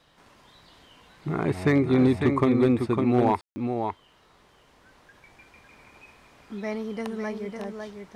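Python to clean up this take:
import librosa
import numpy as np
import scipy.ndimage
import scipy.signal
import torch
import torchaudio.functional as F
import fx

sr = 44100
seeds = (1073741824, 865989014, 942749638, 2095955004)

y = fx.fix_declip(x, sr, threshold_db=-13.0)
y = fx.fix_ambience(y, sr, seeds[0], print_start_s=4.07, print_end_s=4.57, start_s=3.41, end_s=3.56)
y = fx.fix_echo_inverse(y, sr, delay_ms=554, level_db=-6.0)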